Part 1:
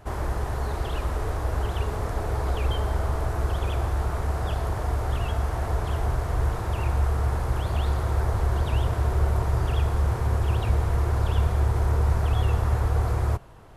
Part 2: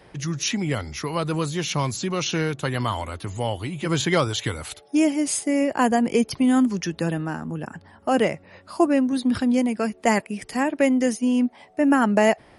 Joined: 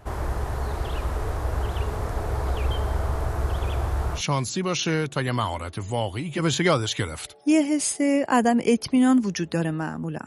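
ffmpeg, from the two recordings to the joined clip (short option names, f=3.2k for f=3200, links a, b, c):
-filter_complex "[0:a]apad=whole_dur=10.26,atrim=end=10.26,atrim=end=4.23,asetpts=PTS-STARTPTS[a];[1:a]atrim=start=1.6:end=7.73,asetpts=PTS-STARTPTS[b];[a][b]acrossfade=d=0.1:c1=tri:c2=tri"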